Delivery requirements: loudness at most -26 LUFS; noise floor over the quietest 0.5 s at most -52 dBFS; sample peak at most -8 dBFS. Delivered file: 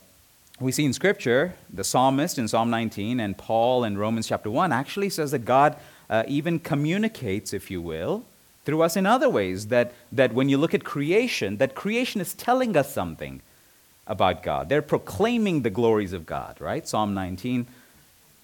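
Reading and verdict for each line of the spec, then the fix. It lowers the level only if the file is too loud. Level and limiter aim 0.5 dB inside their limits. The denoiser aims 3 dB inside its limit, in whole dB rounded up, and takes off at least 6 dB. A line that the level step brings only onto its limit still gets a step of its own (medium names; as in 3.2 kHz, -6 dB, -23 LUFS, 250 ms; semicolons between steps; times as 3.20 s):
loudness -24.5 LUFS: fail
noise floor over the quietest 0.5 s -57 dBFS: pass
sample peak -6.0 dBFS: fail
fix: trim -2 dB; peak limiter -8.5 dBFS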